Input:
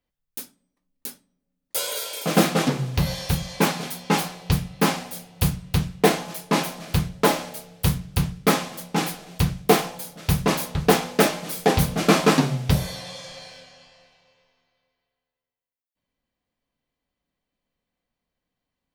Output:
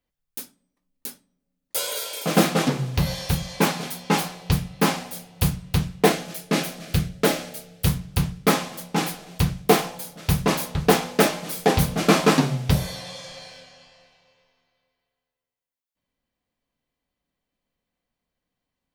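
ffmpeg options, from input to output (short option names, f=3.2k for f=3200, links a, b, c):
-filter_complex "[0:a]asettb=1/sr,asplit=3[a][b][c];[a]atrim=end=6.124[d];[b]atrim=start=6.12:end=7.87,asetpts=PTS-STARTPTS,afade=t=in:d=0.004:c=qsin,afade=t=out:st=1.746:d=0.004:c=qsin,equalizer=f=960:t=o:w=0.42:g=-12[e];[c]atrim=start=7.866[f];[d][e]acrossfade=d=0.004:c1=hsin:c2=qsin[g];[g][f]acrossfade=d=0.004:c1=qsin:c2=hsin"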